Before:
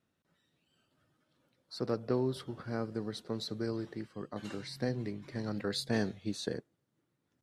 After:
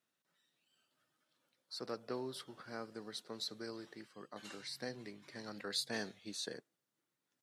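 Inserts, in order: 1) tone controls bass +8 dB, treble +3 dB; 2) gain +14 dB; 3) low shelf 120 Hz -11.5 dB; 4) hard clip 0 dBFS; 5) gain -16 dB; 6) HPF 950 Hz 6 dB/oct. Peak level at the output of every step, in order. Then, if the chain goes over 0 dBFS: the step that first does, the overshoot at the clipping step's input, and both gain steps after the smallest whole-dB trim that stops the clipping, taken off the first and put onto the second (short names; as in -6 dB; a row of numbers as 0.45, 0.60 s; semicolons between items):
-16.0, -2.0, -4.0, -4.0, -20.0, -23.5 dBFS; no overload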